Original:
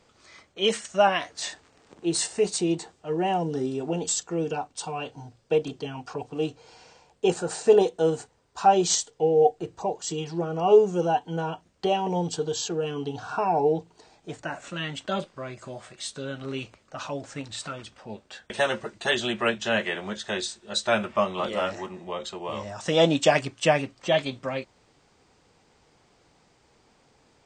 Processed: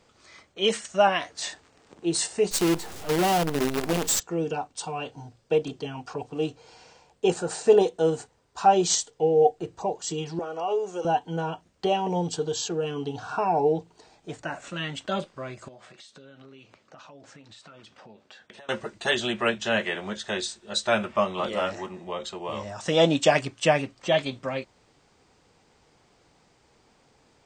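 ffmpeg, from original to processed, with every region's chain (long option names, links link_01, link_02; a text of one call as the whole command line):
ffmpeg -i in.wav -filter_complex "[0:a]asettb=1/sr,asplit=3[link_01][link_02][link_03];[link_01]atrim=end=2.514[link_04];[link_02]atrim=start=2.51:end=4.2,asetpts=PTS-STARTPTS,afade=type=in:duration=0.004:curve=qsin,afade=type=out:start_time=1.686:duration=0.004:curve=qsin,aeval=exprs='val(0)+0.5*0.0299*sgn(val(0))':channel_layout=same,acrusher=bits=5:dc=4:mix=0:aa=0.000001[link_05];[link_03]atrim=start=4.196[link_06];[link_04][link_05]acrossfade=duration=0.004:curve1=hsin:curve2=qsin[link_07];[link_07][link_06]acrossfade=duration=0.004:curve1=qsin:curve2=hsin,asettb=1/sr,asplit=3[link_08][link_09][link_10];[link_08]atrim=end=10.394[link_11];[link_09]atrim=start=10.39:end=11.05,asetpts=PTS-STARTPTS,afade=type=in:duration=0.004:curve=qsin,afade=type=out:start_time=0.656:duration=0.004:curve=qsin,highpass=470,acompressor=threshold=-27dB:ratio=2:attack=3.2:release=140:knee=1:detection=peak[link_12];[link_10]atrim=start=11.046[link_13];[link_11][link_12]acrossfade=duration=0.004:curve1=hsin:curve2=qsin[link_14];[link_14][link_13]acrossfade=duration=0.004:curve1=qsin:curve2=hsin,asettb=1/sr,asplit=3[link_15][link_16][link_17];[link_15]atrim=end=15.684[link_18];[link_16]atrim=start=15.68:end=18.69,asetpts=PTS-STARTPTS,afade=type=in:duration=0.004:curve=qsin,afade=type=out:start_time=3.006:duration=0.004:curve=qsin,acompressor=threshold=-44dB:ratio=16:attack=3.2:release=140:knee=1:detection=peak,highpass=130,lowpass=6200[link_19];[link_17]atrim=start=18.686[link_20];[link_18][link_19]acrossfade=duration=0.004:curve1=hsin:curve2=qsin[link_21];[link_21][link_20]acrossfade=duration=0.004:curve1=qsin:curve2=hsin" out.wav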